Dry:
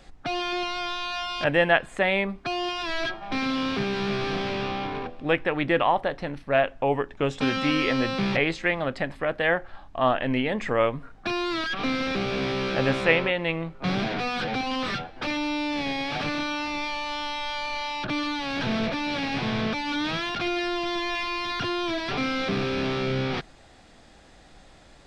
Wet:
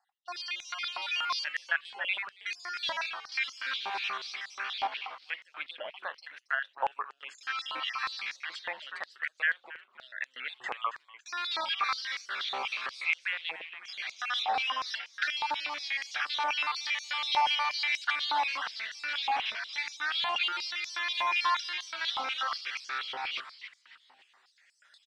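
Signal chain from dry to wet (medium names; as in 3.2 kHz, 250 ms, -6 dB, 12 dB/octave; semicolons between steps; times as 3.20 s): random holes in the spectrogram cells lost 39%; recorder AGC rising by 5.5 dB/s; gate -33 dBFS, range -17 dB; compression 2.5:1, threshold -24 dBFS, peak gain reduction 7 dB; frequency-shifting echo 276 ms, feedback 45%, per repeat -130 Hz, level -10.5 dB; step-sequenced high-pass 8.3 Hz 840–6300 Hz; trim -8.5 dB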